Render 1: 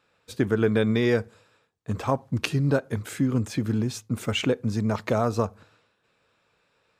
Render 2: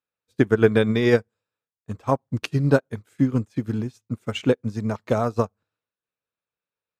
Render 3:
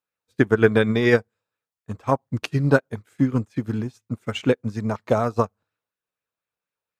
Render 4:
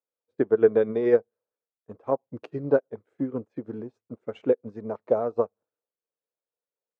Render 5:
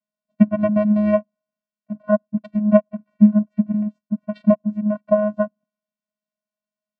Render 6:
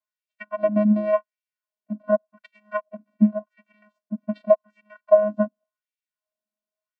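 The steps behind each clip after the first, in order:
upward expander 2.5:1, over -40 dBFS; gain +8 dB
LFO bell 4.1 Hz 700–2200 Hz +6 dB
band-pass 480 Hz, Q 1.9
vocoder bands 8, square 210 Hz; gain +8 dB
LFO high-pass sine 0.88 Hz 240–2400 Hz; gain -4 dB

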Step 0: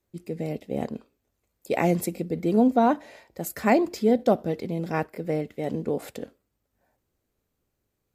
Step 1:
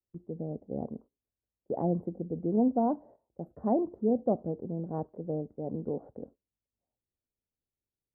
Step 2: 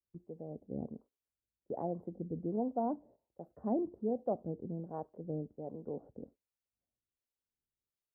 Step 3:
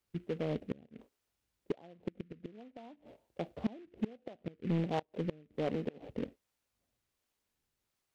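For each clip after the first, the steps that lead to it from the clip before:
inverse Chebyshev low-pass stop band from 2300 Hz, stop band 50 dB; gate -45 dBFS, range -13 dB; low shelf 370 Hz +4 dB; gain -8.5 dB
harmonic tremolo 1.3 Hz, depth 70%, crossover 460 Hz; gain -3 dB
flipped gate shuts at -30 dBFS, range -29 dB; soft clip -34 dBFS, distortion -17 dB; noise-modulated delay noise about 2000 Hz, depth 0.047 ms; gain +11 dB

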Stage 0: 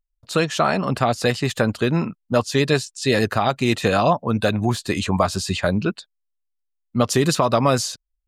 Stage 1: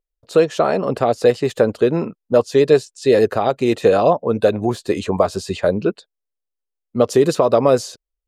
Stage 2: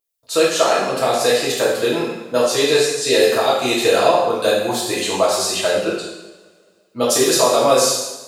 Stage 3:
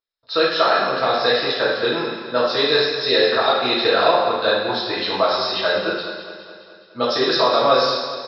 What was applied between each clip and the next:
bell 460 Hz +15 dB 1.3 oct; gain -5.5 dB
tilt +4 dB/oct; two-slope reverb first 0.92 s, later 2.5 s, from -22 dB, DRR -7 dB; gain -4.5 dB
rippled Chebyshev low-pass 5400 Hz, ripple 9 dB; on a send: feedback echo 0.209 s, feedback 59%, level -12 dB; on the sum: gain +4.5 dB

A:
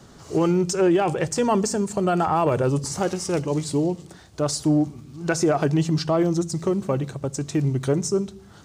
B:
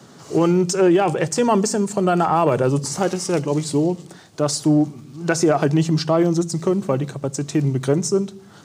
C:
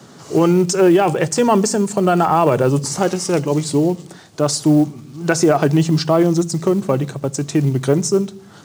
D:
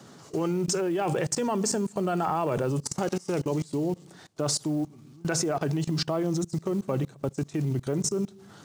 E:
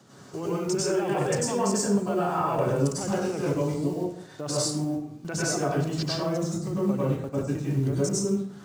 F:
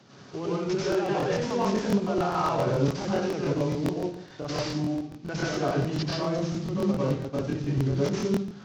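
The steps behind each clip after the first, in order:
HPF 120 Hz 24 dB/oct; gain +3.5 dB
short-mantissa float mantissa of 4-bit; gain +3 dB
level quantiser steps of 23 dB; gain -3.5 dB
plate-style reverb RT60 0.63 s, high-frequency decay 0.65×, pre-delay 85 ms, DRR -7.5 dB; gain -6.5 dB
CVSD 32 kbps; crackling interface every 0.14 s, samples 1024, repeat, from 0.9

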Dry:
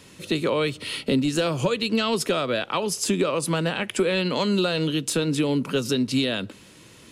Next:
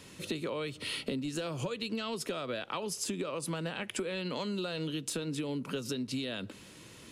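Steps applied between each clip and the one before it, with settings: compressor 6:1, threshold -30 dBFS, peak gain reduction 12 dB; gain -3 dB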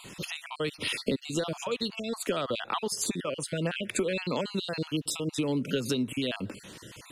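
random spectral dropouts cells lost 37%; gain +7 dB

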